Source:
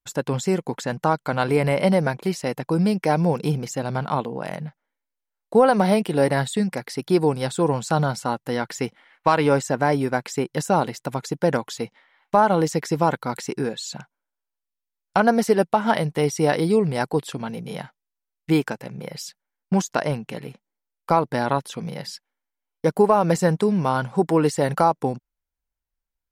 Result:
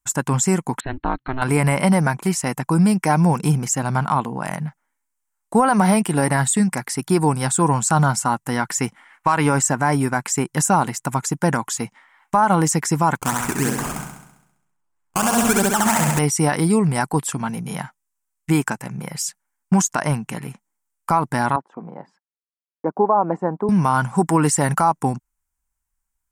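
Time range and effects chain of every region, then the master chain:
0.8–1.42 bell 1100 Hz -10 dB 1.2 oct + ring modulator 130 Hz + brick-wall FIR low-pass 4300 Hz
13.15–16.19 decimation with a swept rate 16× 3.1 Hz + flutter echo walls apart 11.4 m, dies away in 0.84 s
21.56–23.69 expander -38 dBFS + Butterworth band-pass 500 Hz, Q 0.78
whole clip: ten-band EQ 500 Hz -12 dB, 1000 Hz +5 dB, 4000 Hz -11 dB, 8000 Hz +11 dB; limiter -13.5 dBFS; gain +6.5 dB

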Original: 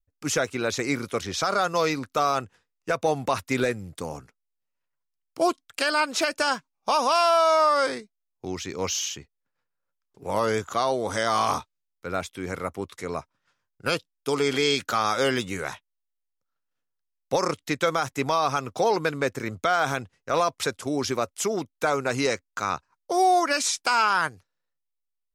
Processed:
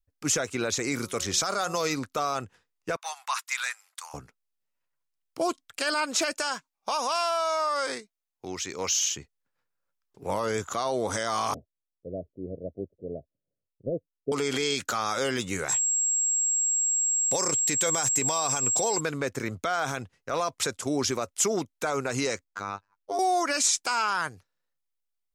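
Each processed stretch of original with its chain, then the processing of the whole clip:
0.92–1.95 high shelf 6100 Hz +7.5 dB + de-hum 183.7 Hz, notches 7
2.96–4.14 steep high-pass 960 Hz + mismatched tape noise reduction decoder only
6.33–9.11 low shelf 360 Hz -8.5 dB + compressor 3:1, threshold -25 dBFS
11.54–14.32 steep low-pass 660 Hz 96 dB/oct + upward expander, over -38 dBFS
15.68–18.99 high shelf 3700 Hz +8.5 dB + notch 1300 Hz, Q 7.5 + whine 7600 Hz -29 dBFS
22.44–23.19 LPF 3200 Hz 6 dB/oct + robotiser 99.9 Hz
whole clip: limiter -18 dBFS; dynamic EQ 7200 Hz, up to +7 dB, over -51 dBFS, Q 1.9

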